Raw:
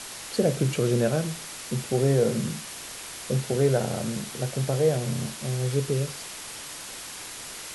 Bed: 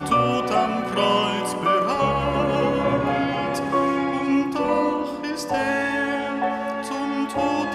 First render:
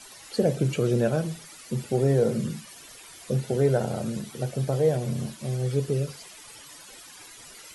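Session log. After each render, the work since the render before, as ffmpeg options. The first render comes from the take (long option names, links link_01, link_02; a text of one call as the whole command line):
ffmpeg -i in.wav -af "afftdn=noise_reduction=13:noise_floor=-39" out.wav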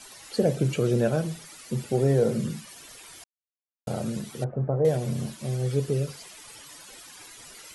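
ffmpeg -i in.wav -filter_complex "[0:a]asettb=1/sr,asplit=3[link_01][link_02][link_03];[link_01]atrim=end=4.444[link_04];[link_02]atrim=start=4.44:end=4.85,asetpts=PTS-STARTPTS,afade=type=in:duration=0.004:curve=qsin,afade=type=out:start_time=0.406:duration=0.004:curve=qsin,lowpass=frequency=1300:width=0.5412,lowpass=frequency=1300:width=1.3066[link_05];[link_03]atrim=start=4.846[link_06];[link_04][link_05]acrossfade=duration=0.004:curve1=hsin:curve2=qsin[link_07];[link_07][link_06]acrossfade=duration=0.004:curve1=qsin:curve2=hsin,asplit=3[link_08][link_09][link_10];[link_08]atrim=end=3.24,asetpts=PTS-STARTPTS,afade=type=out:start_time=3.236:duration=0.004:curve=hsin[link_11];[link_09]atrim=start=3.24:end=3.87,asetpts=PTS-STARTPTS,volume=0[link_12];[link_10]atrim=start=3.87,asetpts=PTS-STARTPTS,afade=type=in:duration=0.004:curve=hsin[link_13];[link_11][link_12][link_13]concat=n=3:v=0:a=1" out.wav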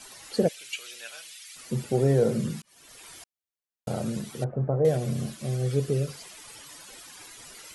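ffmpeg -i in.wav -filter_complex "[0:a]asplit=3[link_01][link_02][link_03];[link_01]afade=type=out:start_time=0.47:duration=0.02[link_04];[link_02]highpass=frequency=2600:width_type=q:width=1.5,afade=type=in:start_time=0.47:duration=0.02,afade=type=out:start_time=1.55:duration=0.02[link_05];[link_03]afade=type=in:start_time=1.55:duration=0.02[link_06];[link_04][link_05][link_06]amix=inputs=3:normalize=0,asettb=1/sr,asplit=3[link_07][link_08][link_09];[link_07]atrim=end=4.804[link_10];[link_08]atrim=start=4.8:end=6.11,asetpts=PTS-STARTPTS,afade=type=in:duration=0.004:curve=qsin,afade=type=out:start_time=1.306:duration=0.004:curve=qsin,asuperstop=centerf=920:order=4:qfactor=7.5[link_11];[link_09]atrim=start=6.106[link_12];[link_10][link_11]acrossfade=duration=0.004:curve1=hsin:curve2=qsin[link_13];[link_13][link_12]acrossfade=duration=0.004:curve1=qsin:curve2=hsin,asplit=2[link_14][link_15];[link_14]atrim=end=2.62,asetpts=PTS-STARTPTS,afade=type=out:start_time=2.616:duration=0.004:curve=hsin[link_16];[link_15]atrim=start=2.62,asetpts=PTS-STARTPTS,afade=type=in:duration=0.45[link_17];[link_16][link_17]concat=n=2:v=0:a=1" out.wav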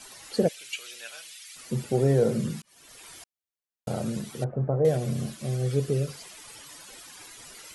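ffmpeg -i in.wav -af anull out.wav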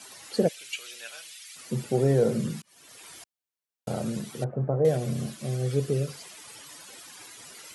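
ffmpeg -i in.wav -af "highpass=94" out.wav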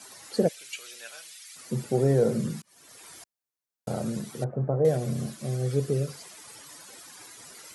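ffmpeg -i in.wav -af "equalizer=frequency=2900:width=1.8:gain=-5" out.wav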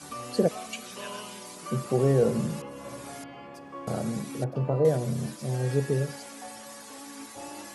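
ffmpeg -i in.wav -i bed.wav -filter_complex "[1:a]volume=-20dB[link_01];[0:a][link_01]amix=inputs=2:normalize=0" out.wav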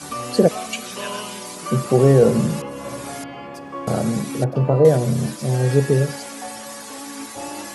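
ffmpeg -i in.wav -af "volume=9.5dB,alimiter=limit=-3dB:level=0:latency=1" out.wav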